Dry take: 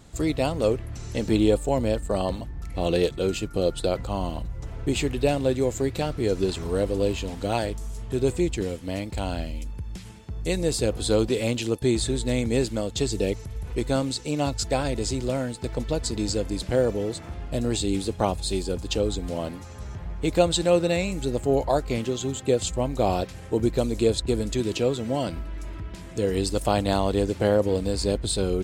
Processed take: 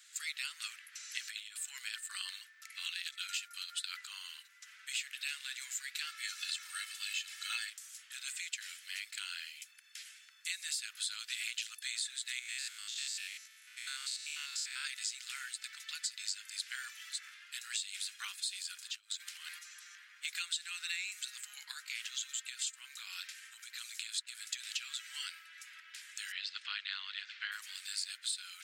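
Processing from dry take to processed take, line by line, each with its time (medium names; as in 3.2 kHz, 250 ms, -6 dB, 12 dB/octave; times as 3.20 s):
1.11–4.04 s: compressor with a negative ratio -23 dBFS, ratio -0.5
6.07–7.70 s: comb 2.3 ms, depth 96%
12.39–14.85 s: spectrogram pixelated in time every 100 ms
18.90–19.59 s: compressor with a negative ratio -31 dBFS, ratio -0.5
21.71–24.71 s: compression 5:1, threshold -22 dBFS
26.32–27.52 s: low-pass 4.1 kHz 24 dB/octave
whole clip: steep high-pass 1.5 kHz 48 dB/octave; compression 5:1, threshold -35 dBFS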